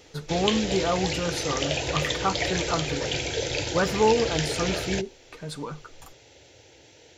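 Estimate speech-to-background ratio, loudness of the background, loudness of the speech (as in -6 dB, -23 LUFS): 0.0 dB, -28.5 LUFS, -28.5 LUFS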